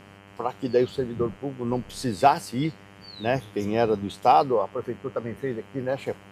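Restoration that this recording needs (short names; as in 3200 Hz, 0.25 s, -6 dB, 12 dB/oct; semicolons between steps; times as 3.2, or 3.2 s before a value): de-hum 99.4 Hz, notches 32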